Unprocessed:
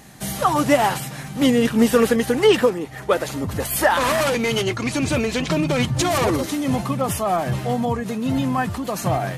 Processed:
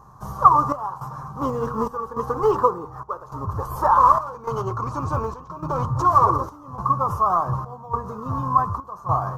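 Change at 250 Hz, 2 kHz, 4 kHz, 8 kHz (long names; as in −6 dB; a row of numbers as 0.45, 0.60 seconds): −12.0 dB, −16.0 dB, below −20 dB, below −15 dB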